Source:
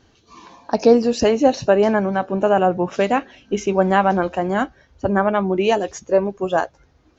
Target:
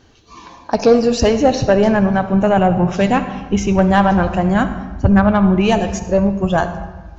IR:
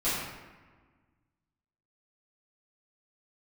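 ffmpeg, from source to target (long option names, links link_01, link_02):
-filter_complex "[0:a]asubboost=boost=12:cutoff=120,acontrast=60,asplit=2[link_01][link_02];[1:a]atrim=start_sample=2205,adelay=50[link_03];[link_02][link_03]afir=irnorm=-1:irlink=0,volume=-20dB[link_04];[link_01][link_04]amix=inputs=2:normalize=0,volume=-1.5dB"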